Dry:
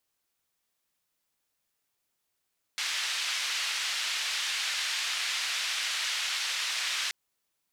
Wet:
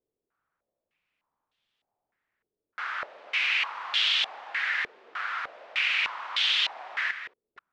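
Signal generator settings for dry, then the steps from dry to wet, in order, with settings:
band-limited noise 1,800–4,200 Hz, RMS −31.5 dBFS 4.33 s
delay that plays each chunk backwards 253 ms, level −10 dB
low-pass on a step sequencer 3.3 Hz 430–3,300 Hz

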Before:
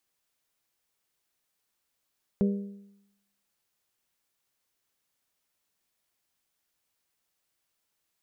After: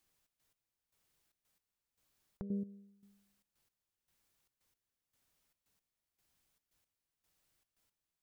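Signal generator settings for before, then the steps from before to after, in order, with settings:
struck metal bell, lowest mode 200 Hz, modes 4, decay 0.84 s, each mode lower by 7 dB, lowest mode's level −19.5 dB
low-shelf EQ 180 Hz +11.5 dB
downward compressor 4 to 1, threshold −32 dBFS
gate pattern "xx.x...x" 114 BPM −12 dB

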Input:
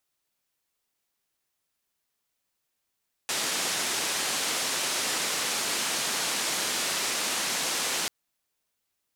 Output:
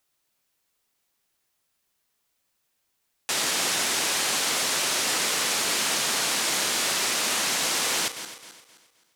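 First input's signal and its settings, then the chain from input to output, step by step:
band-limited noise 200–8,200 Hz, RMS −29 dBFS 4.79 s
feedback delay that plays each chunk backwards 131 ms, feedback 58%, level −13 dB
in parallel at −2.5 dB: brickwall limiter −23.5 dBFS

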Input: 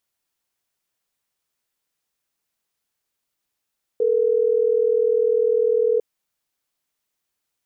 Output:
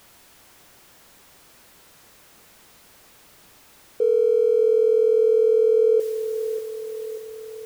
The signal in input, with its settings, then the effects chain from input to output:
call progress tone ringback tone, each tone −18.5 dBFS
converter with a step at zero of −40 dBFS
on a send: bucket-brigade delay 588 ms, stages 2,048, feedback 58%, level −10 dB
on the sum: one half of a high-frequency compander decoder only

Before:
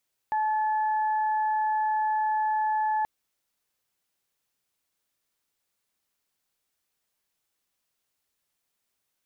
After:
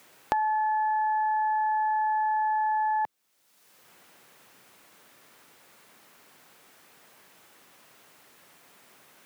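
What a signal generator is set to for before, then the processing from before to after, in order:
steady harmonic partials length 2.73 s, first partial 863 Hz, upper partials −14 dB, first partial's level −23 dB
multiband upward and downward compressor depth 100%

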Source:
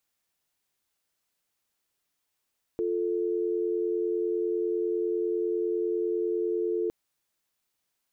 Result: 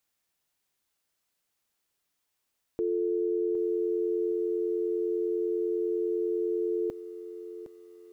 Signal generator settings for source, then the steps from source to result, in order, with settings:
call progress tone dial tone, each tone −28 dBFS 4.11 s
feedback echo at a low word length 762 ms, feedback 35%, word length 10 bits, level −12 dB

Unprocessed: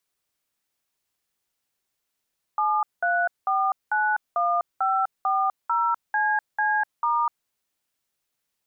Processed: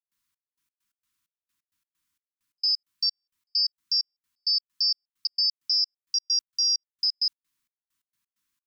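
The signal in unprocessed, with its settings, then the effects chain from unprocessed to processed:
touch tones "73491540CC*", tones 250 ms, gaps 195 ms, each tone −22.5 dBFS
neighbouring bands swapped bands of 4,000 Hz
brick-wall band-stop 350–920 Hz
gate pattern ".xx..x.x" 131 BPM −60 dB

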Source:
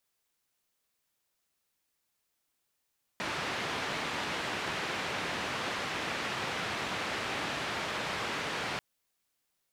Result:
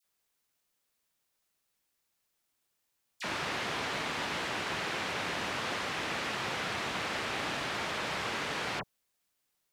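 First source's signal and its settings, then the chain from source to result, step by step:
band-limited noise 96–2,500 Hz, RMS −35 dBFS 5.59 s
all-pass dispersion lows, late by 44 ms, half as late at 1,700 Hz

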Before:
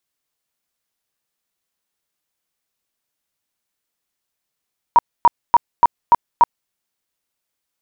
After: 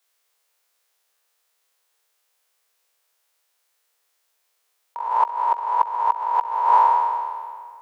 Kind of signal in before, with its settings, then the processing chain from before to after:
tone bursts 950 Hz, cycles 26, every 0.29 s, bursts 6, −5.5 dBFS
peak hold with a decay on every bin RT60 1.97 s
elliptic high-pass filter 440 Hz, stop band 70 dB
compressor whose output falls as the input rises −19 dBFS, ratio −0.5

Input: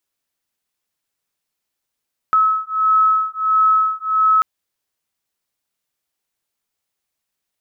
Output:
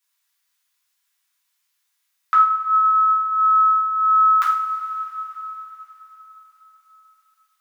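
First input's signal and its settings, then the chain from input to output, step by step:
two tones that beat 1,290 Hz, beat 1.5 Hz, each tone −16 dBFS 2.09 s
high-pass filter 1,000 Hz 24 dB per octave
flutter between parallel walls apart 8.7 metres, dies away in 0.33 s
coupled-rooms reverb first 0.39 s, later 4.6 s, from −19 dB, DRR −6 dB

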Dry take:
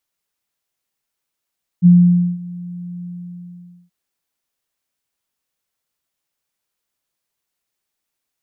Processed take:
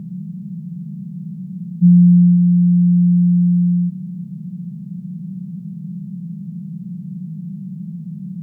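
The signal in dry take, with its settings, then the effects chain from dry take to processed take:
note with an ADSR envelope sine 176 Hz, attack 39 ms, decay 518 ms, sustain −22.5 dB, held 1.22 s, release 860 ms −4 dBFS
compressor on every frequency bin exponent 0.2
high-pass filter 94 Hz

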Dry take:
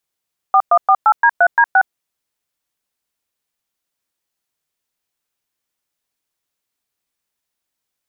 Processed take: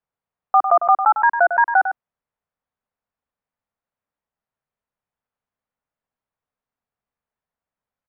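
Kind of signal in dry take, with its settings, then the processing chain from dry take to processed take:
touch tones "4148D3D6", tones 63 ms, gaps 110 ms, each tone −10 dBFS
low-pass filter 1,300 Hz 12 dB per octave
parametric band 340 Hz −11 dB 0.37 octaves
on a send: single-tap delay 101 ms −9 dB

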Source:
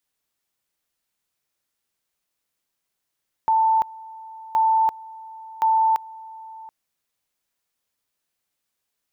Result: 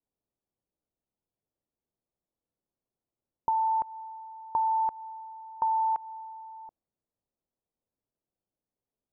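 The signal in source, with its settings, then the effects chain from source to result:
tone at two levels in turn 888 Hz −15 dBFS, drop 21.5 dB, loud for 0.34 s, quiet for 0.73 s, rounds 3
low-pass that shuts in the quiet parts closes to 610 Hz, open at −16 dBFS
downward compressor, threshold −24 dBFS
low-pass filter 1,200 Hz 12 dB per octave

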